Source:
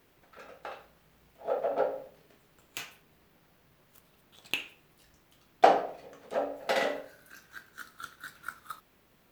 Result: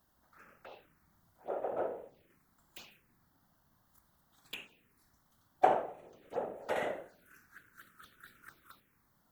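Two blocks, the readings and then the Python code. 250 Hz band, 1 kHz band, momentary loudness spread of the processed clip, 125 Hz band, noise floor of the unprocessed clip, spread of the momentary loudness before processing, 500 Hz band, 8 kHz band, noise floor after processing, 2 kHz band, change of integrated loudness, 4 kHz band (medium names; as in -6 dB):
-5.0 dB, -5.5 dB, 25 LU, -2.5 dB, -65 dBFS, 24 LU, -6.5 dB, under -10 dB, -73 dBFS, -9.0 dB, -5.0 dB, -12.0 dB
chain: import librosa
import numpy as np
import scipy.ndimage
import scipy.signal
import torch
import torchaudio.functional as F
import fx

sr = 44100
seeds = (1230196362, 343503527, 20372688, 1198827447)

y = fx.env_phaser(x, sr, low_hz=380.0, high_hz=4800.0, full_db=-33.0)
y = fx.whisperise(y, sr, seeds[0])
y = fx.hpss(y, sr, part='harmonic', gain_db=6)
y = y * librosa.db_to_amplitude(-8.5)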